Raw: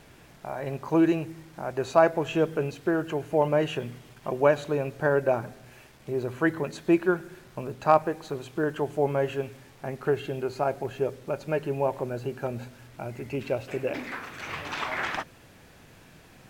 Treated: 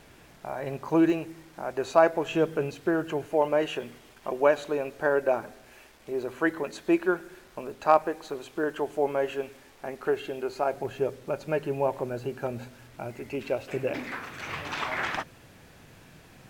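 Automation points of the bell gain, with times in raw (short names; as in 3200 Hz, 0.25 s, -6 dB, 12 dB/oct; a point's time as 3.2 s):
bell 130 Hz 0.97 oct
-3.5 dB
from 1.1 s -9.5 dB
from 2.31 s -3.5 dB
from 3.26 s -15 dB
from 10.73 s -3 dB
from 13.11 s -9 dB
from 13.73 s +1.5 dB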